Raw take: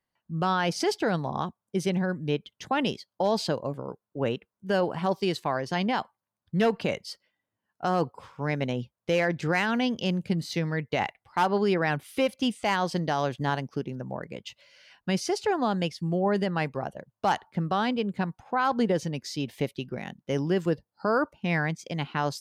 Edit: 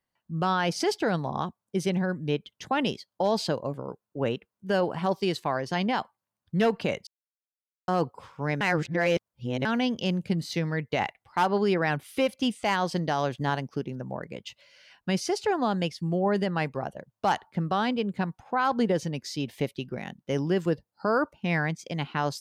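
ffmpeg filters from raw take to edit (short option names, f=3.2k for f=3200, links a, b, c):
-filter_complex "[0:a]asplit=5[a][b][c][d][e];[a]atrim=end=7.07,asetpts=PTS-STARTPTS,afade=t=out:st=7.066:d=0.004:c=hsin[f];[b]atrim=start=7.07:end=7.88,asetpts=PTS-STARTPTS,volume=0[g];[c]atrim=start=7.88:end=8.612,asetpts=PTS-STARTPTS,afade=t=in:d=0.004:c=hsin[h];[d]atrim=start=8.608:end=9.652,asetpts=PTS-STARTPTS,areverse[i];[e]atrim=start=9.648[j];[f][g][h]concat=n=3:v=0:a=1[k];[k][i]acrossfade=d=0.004:c1=hsin:c2=hsin[l];[l][j]acrossfade=d=0.004:c1=hsin:c2=hsin"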